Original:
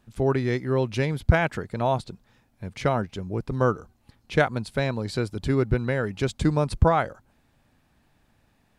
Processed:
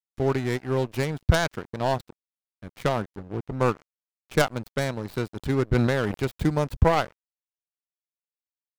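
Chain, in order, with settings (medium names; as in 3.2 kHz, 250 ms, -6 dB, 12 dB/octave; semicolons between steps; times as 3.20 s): tracing distortion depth 0.39 ms; 3.05–3.60 s: low-pass 1.5 kHz 6 dB/octave; crossover distortion -35.5 dBFS; 5.66–6.16 s: decay stretcher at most 21 dB/s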